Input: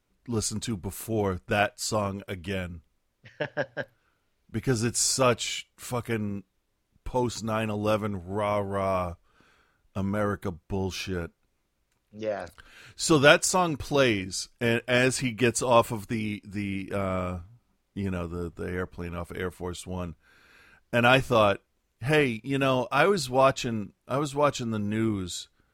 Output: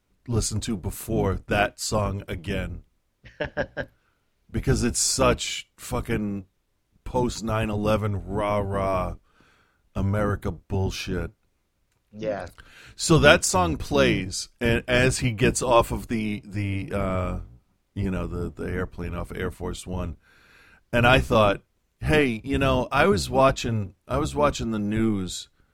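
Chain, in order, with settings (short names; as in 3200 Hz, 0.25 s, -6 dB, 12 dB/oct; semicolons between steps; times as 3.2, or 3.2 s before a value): octaver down 1 oct, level -1 dB; gain +2 dB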